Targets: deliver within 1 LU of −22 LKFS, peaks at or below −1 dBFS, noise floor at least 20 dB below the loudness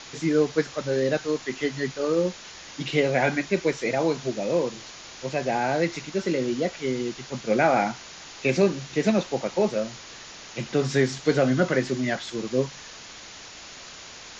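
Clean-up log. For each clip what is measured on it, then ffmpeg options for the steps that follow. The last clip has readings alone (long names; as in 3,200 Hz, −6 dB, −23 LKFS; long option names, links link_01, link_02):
background noise floor −43 dBFS; target noise floor −46 dBFS; integrated loudness −25.5 LKFS; sample peak −8.5 dBFS; target loudness −22.0 LKFS
→ -af "afftdn=noise_reduction=6:noise_floor=-43"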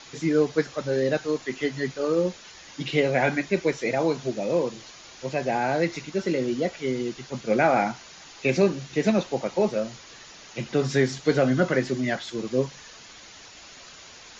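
background noise floor −47 dBFS; integrated loudness −25.5 LKFS; sample peak −8.5 dBFS; target loudness −22.0 LKFS
→ -af "volume=3.5dB"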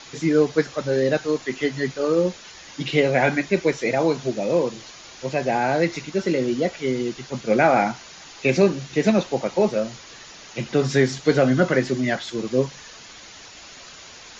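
integrated loudness −22.0 LKFS; sample peak −5.0 dBFS; background noise floor −43 dBFS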